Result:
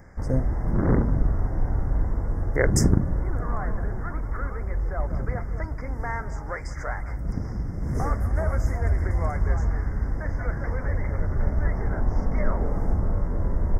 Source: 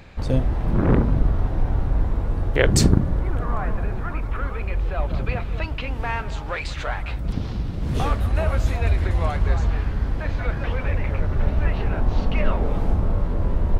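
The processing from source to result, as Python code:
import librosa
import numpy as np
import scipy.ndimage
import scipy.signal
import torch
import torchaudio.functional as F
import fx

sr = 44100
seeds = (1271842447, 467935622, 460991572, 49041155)

y = scipy.signal.sosfilt(scipy.signal.cheby1(5, 1.0, [2100.0, 5000.0], 'bandstop', fs=sr, output='sos'), x)
y = F.gain(torch.from_numpy(y), -3.0).numpy()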